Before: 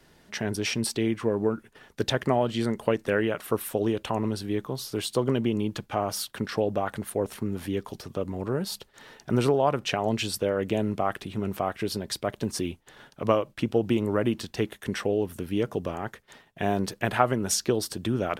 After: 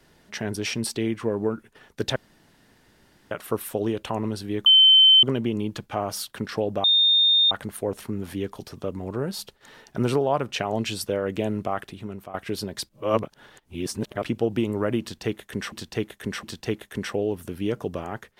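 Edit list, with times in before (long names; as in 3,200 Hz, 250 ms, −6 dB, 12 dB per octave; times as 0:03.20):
0:02.16–0:03.31: fill with room tone
0:04.66–0:05.23: beep over 3,080 Hz −10.5 dBFS
0:06.84: insert tone 3,650 Hz −15 dBFS 0.67 s
0:10.77–0:11.67: fade out equal-power, to −14.5 dB
0:12.22–0:13.57: reverse
0:14.34–0:15.05: repeat, 3 plays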